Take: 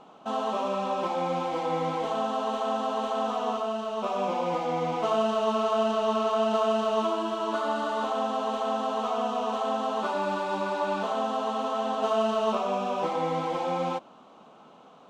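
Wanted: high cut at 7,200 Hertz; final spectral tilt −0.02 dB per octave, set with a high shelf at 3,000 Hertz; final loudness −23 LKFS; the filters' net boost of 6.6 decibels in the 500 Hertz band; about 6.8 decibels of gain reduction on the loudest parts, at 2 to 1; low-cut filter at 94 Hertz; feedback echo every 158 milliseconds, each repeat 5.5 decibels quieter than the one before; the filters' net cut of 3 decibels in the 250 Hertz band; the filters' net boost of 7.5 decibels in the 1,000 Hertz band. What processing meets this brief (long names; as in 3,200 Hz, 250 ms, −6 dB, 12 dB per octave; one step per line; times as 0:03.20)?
high-pass filter 94 Hz
low-pass filter 7,200 Hz
parametric band 250 Hz −5.5 dB
parametric band 500 Hz +6.5 dB
parametric band 1,000 Hz +8.5 dB
high-shelf EQ 3,000 Hz −6.5 dB
downward compressor 2 to 1, threshold −28 dBFS
repeating echo 158 ms, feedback 53%, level −5.5 dB
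level +3 dB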